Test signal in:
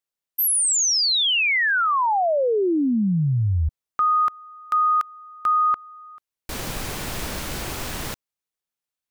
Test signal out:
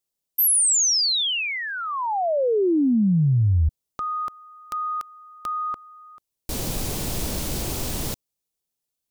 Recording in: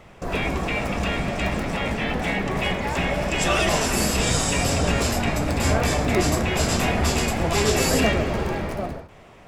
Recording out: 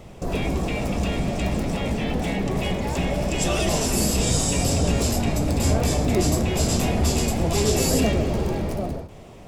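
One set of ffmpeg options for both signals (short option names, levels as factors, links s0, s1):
-filter_complex "[0:a]asplit=2[s0][s1];[s1]acompressor=threshold=0.0224:ratio=6:attack=1.1:release=21:detection=peak,volume=1.26[s2];[s0][s2]amix=inputs=2:normalize=0,equalizer=f=1600:w=0.68:g=-12"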